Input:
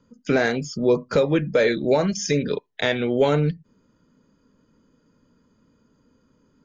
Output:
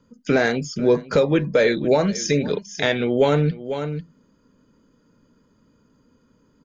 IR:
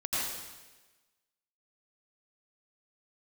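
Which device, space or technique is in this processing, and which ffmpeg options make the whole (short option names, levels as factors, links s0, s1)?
ducked delay: -filter_complex "[0:a]asplit=3[s0][s1][s2];[s1]adelay=495,volume=0.376[s3];[s2]apad=whole_len=314923[s4];[s3][s4]sidechaincompress=threshold=0.0282:ratio=8:attack=40:release=282[s5];[s0][s5]amix=inputs=2:normalize=0,volume=1.19"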